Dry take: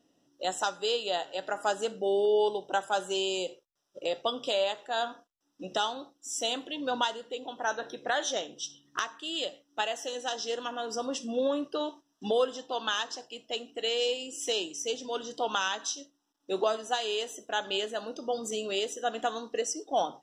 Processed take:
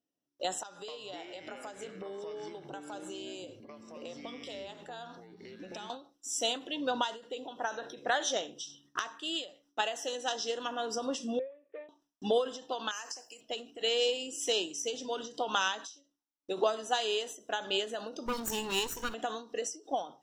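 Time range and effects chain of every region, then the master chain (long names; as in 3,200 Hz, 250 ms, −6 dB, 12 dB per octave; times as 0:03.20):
0:00.63–0:05.90: downward compressor 5 to 1, threshold −42 dBFS + delay with pitch and tempo change per echo 251 ms, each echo −5 semitones, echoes 3, each echo −6 dB
0:11.39–0:11.89: gap after every zero crossing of 0.14 ms + formant resonators in series e + spectral tilt +2.5 dB per octave
0:12.91–0:13.41: RIAA equalisation recording + downward compressor, threshold −32 dBFS + Butterworth band-reject 3,600 Hz, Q 1.7
0:18.26–0:19.14: lower of the sound and its delayed copy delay 0.72 ms + high-shelf EQ 9,100 Hz +9.5 dB
whole clip: noise gate with hold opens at −54 dBFS; every ending faded ahead of time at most 150 dB per second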